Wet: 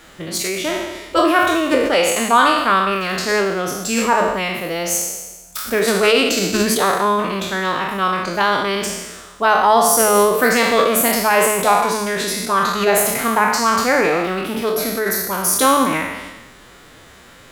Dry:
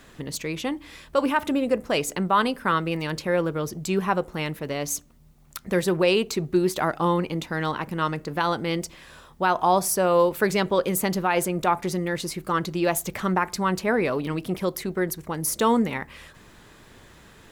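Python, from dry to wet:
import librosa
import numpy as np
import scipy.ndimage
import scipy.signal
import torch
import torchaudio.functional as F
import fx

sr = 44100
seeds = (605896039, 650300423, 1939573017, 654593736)

y = fx.spec_trails(x, sr, decay_s=1.2)
y = fx.low_shelf(y, sr, hz=290.0, db=-6.0)
y = fx.hum_notches(y, sr, base_hz=60, count=6)
y = fx.pitch_keep_formants(y, sr, semitones=3.0)
y = y * librosa.db_to_amplitude(6.0)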